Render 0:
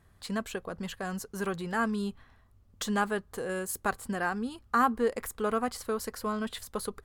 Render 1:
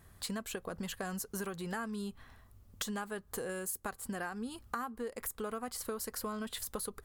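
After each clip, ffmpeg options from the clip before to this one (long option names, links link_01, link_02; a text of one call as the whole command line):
ffmpeg -i in.wav -af "highshelf=frequency=7700:gain=11,acompressor=threshold=-38dB:ratio=12,volume=2.5dB" out.wav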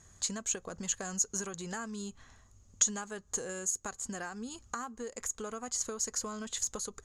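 ffmpeg -i in.wav -af "lowpass=frequency=6700:width_type=q:width=15,volume=-1.5dB" out.wav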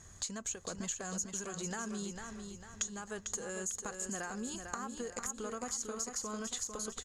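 ffmpeg -i in.wav -filter_complex "[0:a]acompressor=threshold=-41dB:ratio=4,asplit=2[link_01][link_02];[link_02]aecho=0:1:449|898|1347|1796|2245:0.473|0.203|0.0875|0.0376|0.0162[link_03];[link_01][link_03]amix=inputs=2:normalize=0,volume=3.5dB" out.wav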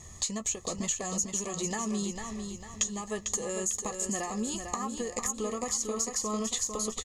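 ffmpeg -i in.wav -filter_complex "[0:a]asuperstop=centerf=1500:order=20:qfactor=4.1,asplit=2[link_01][link_02];[link_02]adelay=14,volume=-10.5dB[link_03];[link_01][link_03]amix=inputs=2:normalize=0,volume=7dB" out.wav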